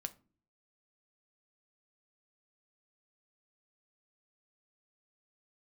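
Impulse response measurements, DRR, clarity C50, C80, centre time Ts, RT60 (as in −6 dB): 9.0 dB, 19.5 dB, 25.0 dB, 4 ms, non-exponential decay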